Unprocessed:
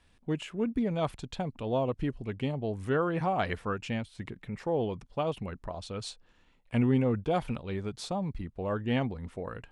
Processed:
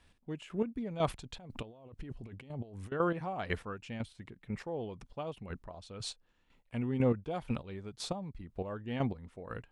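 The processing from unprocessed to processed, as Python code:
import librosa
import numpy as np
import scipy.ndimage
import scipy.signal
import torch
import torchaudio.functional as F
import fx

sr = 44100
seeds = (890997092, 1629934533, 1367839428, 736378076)

y = fx.over_compress(x, sr, threshold_db=-40.0, ratio=-1.0, at=(1.06, 2.92))
y = fx.chopper(y, sr, hz=2.0, depth_pct=65, duty_pct=25)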